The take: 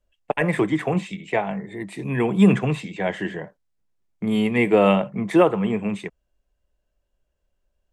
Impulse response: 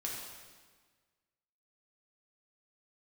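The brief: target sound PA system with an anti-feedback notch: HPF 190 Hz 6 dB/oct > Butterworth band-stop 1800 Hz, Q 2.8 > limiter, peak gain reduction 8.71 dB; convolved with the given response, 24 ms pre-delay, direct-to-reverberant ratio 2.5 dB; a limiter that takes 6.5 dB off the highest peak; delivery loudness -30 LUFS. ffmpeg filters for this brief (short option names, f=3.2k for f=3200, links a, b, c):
-filter_complex "[0:a]alimiter=limit=-11dB:level=0:latency=1,asplit=2[a][b];[1:a]atrim=start_sample=2205,adelay=24[c];[b][c]afir=irnorm=-1:irlink=0,volume=-4dB[d];[a][d]amix=inputs=2:normalize=0,highpass=f=190:p=1,asuperstop=centerf=1800:order=8:qfactor=2.8,volume=-3dB,alimiter=limit=-19.5dB:level=0:latency=1"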